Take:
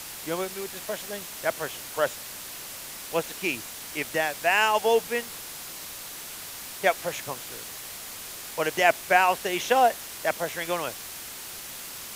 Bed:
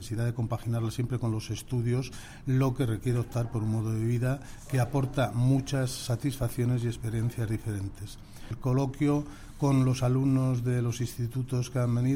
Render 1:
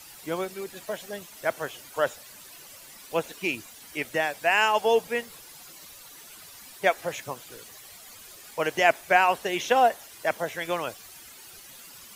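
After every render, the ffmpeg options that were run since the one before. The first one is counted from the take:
ffmpeg -i in.wav -af "afftdn=noise_reduction=12:noise_floor=-40" out.wav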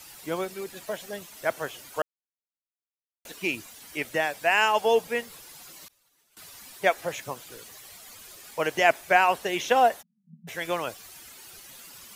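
ffmpeg -i in.wav -filter_complex "[0:a]asettb=1/sr,asplit=3[link_01][link_02][link_03];[link_01]atrim=end=5.884[link_04];[link_02]atrim=start=5.88:end=6.37,asetpts=PTS-STARTPTS,afade=type=in:duration=0.004:curve=qsin,afade=type=out:start_time=0.486:duration=0.004:curve=qsin,agate=range=-33dB:threshold=-35dB:ratio=3:release=100:detection=peak[link_05];[link_03]atrim=start=6.366[link_06];[link_04][link_05]acrossfade=duration=0.004:curve1=hsin:curve2=qsin[link_07];[link_07][link_06]acrossfade=duration=0.004:curve1=qsin:curve2=hsin,asplit=3[link_08][link_09][link_10];[link_08]afade=type=out:start_time=10.01:duration=0.02[link_11];[link_09]asuperpass=centerf=190:order=20:qfactor=2.4,afade=type=in:start_time=10.01:duration=0.02,afade=type=out:start_time=10.47:duration=0.02[link_12];[link_10]afade=type=in:start_time=10.47:duration=0.02[link_13];[link_11][link_12][link_13]amix=inputs=3:normalize=0,asplit=3[link_14][link_15][link_16];[link_14]atrim=end=2.02,asetpts=PTS-STARTPTS,afade=type=out:start_time=2.016:duration=0.004:curve=hsin[link_17];[link_15]atrim=start=2.02:end=3.25,asetpts=PTS-STARTPTS,volume=0[link_18];[link_16]atrim=start=3.25,asetpts=PTS-STARTPTS,afade=type=in:duration=0.004:curve=hsin[link_19];[link_17][link_18][link_19]concat=n=3:v=0:a=1" out.wav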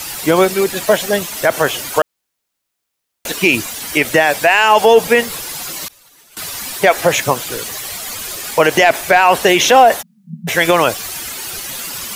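ffmpeg -i in.wav -af "acontrast=88,alimiter=level_in=13.5dB:limit=-1dB:release=50:level=0:latency=1" out.wav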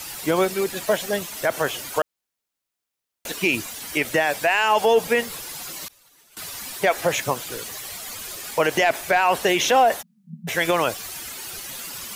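ffmpeg -i in.wav -af "volume=-8.5dB" out.wav

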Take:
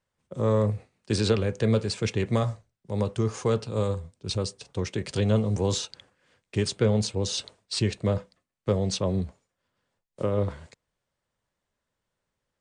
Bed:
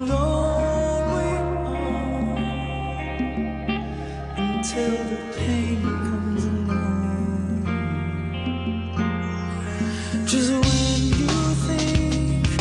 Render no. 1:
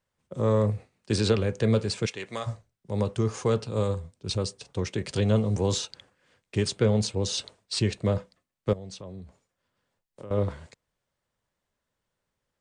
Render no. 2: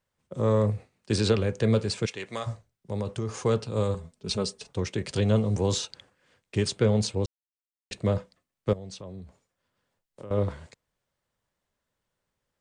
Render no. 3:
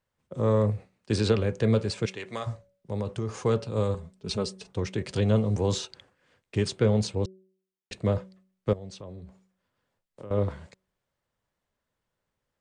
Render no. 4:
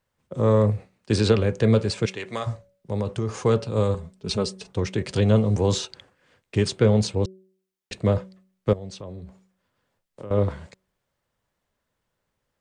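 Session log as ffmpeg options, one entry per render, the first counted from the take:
ffmpeg -i in.wav -filter_complex "[0:a]asplit=3[link_01][link_02][link_03];[link_01]afade=type=out:start_time=2.05:duration=0.02[link_04];[link_02]highpass=frequency=1200:poles=1,afade=type=in:start_time=2.05:duration=0.02,afade=type=out:start_time=2.46:duration=0.02[link_05];[link_03]afade=type=in:start_time=2.46:duration=0.02[link_06];[link_04][link_05][link_06]amix=inputs=3:normalize=0,asettb=1/sr,asplit=3[link_07][link_08][link_09];[link_07]atrim=end=8.734[link_10];[link_08]atrim=start=8.73:end=10.31,asetpts=PTS-STARTPTS,afade=type=in:duration=0.004:curve=qsin,afade=type=out:start_time=1.576:duration=0.004:curve=qsin,acompressor=threshold=-45dB:ratio=2.5:attack=3.2:release=140:knee=1:detection=peak[link_11];[link_09]atrim=start=10.306[link_12];[link_10][link_11]acrossfade=duration=0.004:curve1=hsin:curve2=qsin[link_13];[link_13][link_12]acrossfade=duration=0.004:curve1=qsin:curve2=hsin" out.wav
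ffmpeg -i in.wav -filter_complex "[0:a]asplit=3[link_01][link_02][link_03];[link_01]afade=type=out:start_time=2.05:duration=0.02[link_04];[link_02]acompressor=threshold=-25dB:ratio=6:attack=3.2:release=140:knee=1:detection=peak,afade=type=in:start_time=2.05:duration=0.02,afade=type=out:start_time=3.28:duration=0.02[link_05];[link_03]afade=type=in:start_time=3.28:duration=0.02[link_06];[link_04][link_05][link_06]amix=inputs=3:normalize=0,asettb=1/sr,asplit=3[link_07][link_08][link_09];[link_07]atrim=end=3.944[link_10];[link_08]atrim=start=3.94:end=4.69,asetpts=PTS-STARTPTS,afade=type=in:duration=0.004:curve=qsin,afade=type=out:start_time=0.746:duration=0.004:curve=qsin,aecho=1:1:4.7:0.65,atrim=end_sample=33075[link_11];[link_09]atrim=start=4.686[link_12];[link_10][link_11]acrossfade=duration=0.004:curve1=hsin:curve2=qsin[link_13];[link_13][link_12]acrossfade=duration=0.004:curve1=qsin:curve2=hsin,asplit=3[link_14][link_15][link_16];[link_14]atrim=end=7.26,asetpts=PTS-STARTPTS,afade=type=out:start_time=7.256:duration=0.004:curve=hsin[link_17];[link_15]atrim=start=7.26:end=7.91,asetpts=PTS-STARTPTS,volume=0[link_18];[link_16]atrim=start=7.91,asetpts=PTS-STARTPTS,afade=type=in:duration=0.004:curve=hsin[link_19];[link_17][link_18][link_19]concat=n=3:v=0:a=1" out.wav
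ffmpeg -i in.wav -af "highshelf=frequency=4200:gain=-5.5,bandreject=frequency=188.6:width_type=h:width=4,bandreject=frequency=377.2:width_type=h:width=4,bandreject=frequency=565.8:width_type=h:width=4" out.wav
ffmpeg -i in.wav -af "volume=4.5dB" out.wav

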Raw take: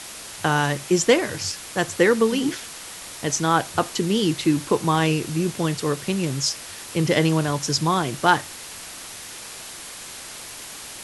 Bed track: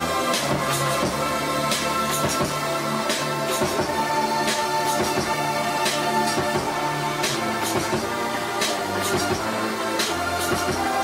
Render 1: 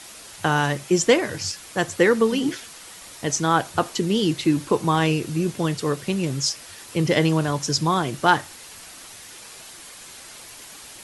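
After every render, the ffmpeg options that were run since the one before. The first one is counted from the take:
ffmpeg -i in.wav -af "afftdn=noise_reduction=6:noise_floor=-38" out.wav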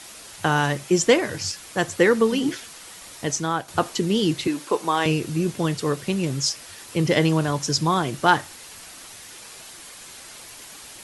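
ffmpeg -i in.wav -filter_complex "[0:a]asettb=1/sr,asplit=3[link_01][link_02][link_03];[link_01]atrim=end=4.474[link_04];[link_02]atrim=start=4.47:end=5.06,asetpts=PTS-STARTPTS,afade=type=in:duration=0.004:curve=qsin,afade=type=out:start_time=0.586:duration=0.004:curve=qsin,highpass=380[link_05];[link_03]atrim=start=5.056[link_06];[link_04][link_05]acrossfade=duration=0.004:curve1=hsin:curve2=qsin[link_07];[link_07][link_06]acrossfade=duration=0.004:curve1=qsin:curve2=hsin,asplit=2[link_08][link_09];[link_08]atrim=end=3.68,asetpts=PTS-STARTPTS,afade=type=out:start_time=3.22:duration=0.46:silence=0.316228[link_10];[link_09]atrim=start=3.68,asetpts=PTS-STARTPTS,afade=type=in:duration=0.004:curve=hsin:silence=0.316228[link_11];[link_10][link_11]concat=n=2:v=0:a=1" out.wav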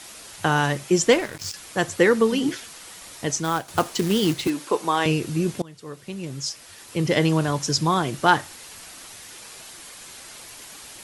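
ffmpeg -i in.wav -filter_complex "[0:a]asettb=1/sr,asplit=3[link_01][link_02][link_03];[link_01]atrim=end=1.124[link_04];[link_02]atrim=start=1.12:end=1.54,asetpts=PTS-STARTPTS,afade=type=in:duration=0.004:curve=qsin,afade=type=out:start_time=0.416:duration=0.004:curve=qsin,aeval=exprs='sgn(val(0))*max(abs(val(0))-0.0224,0)':channel_layout=same[link_05];[link_03]atrim=start=1.536[link_06];[link_04][link_05]acrossfade=duration=0.004:curve1=hsin:curve2=qsin[link_07];[link_07][link_06]acrossfade=duration=0.004:curve1=qsin:curve2=hsin,asettb=1/sr,asplit=3[link_08][link_09][link_10];[link_08]atrim=end=3.444[link_11];[link_09]atrim=start=3.44:end=4.5,asetpts=PTS-STARTPTS,afade=type=in:duration=0.004:curve=qsin,afade=type=out:start_time=1.056:duration=0.004:curve=qsin,acrusher=bits=3:mode=log:mix=0:aa=0.000001[link_12];[link_10]atrim=start=4.496[link_13];[link_11][link_12]acrossfade=duration=0.004:curve1=hsin:curve2=qsin[link_14];[link_14][link_13]acrossfade=duration=0.004:curve1=qsin:curve2=hsin,asplit=2[link_15][link_16];[link_15]atrim=end=5.62,asetpts=PTS-STARTPTS,afade=type=out:start_time=5.616:duration=0.004:curve=hsin:silence=0.0630957[link_17];[link_16]atrim=start=5.62,asetpts=PTS-STARTPTS,afade=type=in:duration=1.74:silence=0.0630957[link_18];[link_17][link_18]concat=n=2:v=0:a=1" out.wav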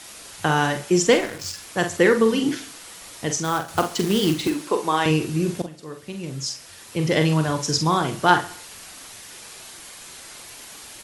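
ffmpeg -i in.wav -filter_complex "[0:a]asplit=2[link_01][link_02];[link_02]adelay=45,volume=-7.5dB[link_03];[link_01][link_03]amix=inputs=2:normalize=0,aecho=1:1:68|136|204|272:0.126|0.0629|0.0315|0.0157" out.wav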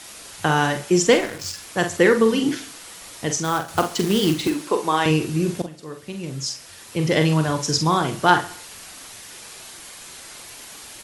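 ffmpeg -i in.wav -af "volume=1dB,alimiter=limit=-1dB:level=0:latency=1" out.wav

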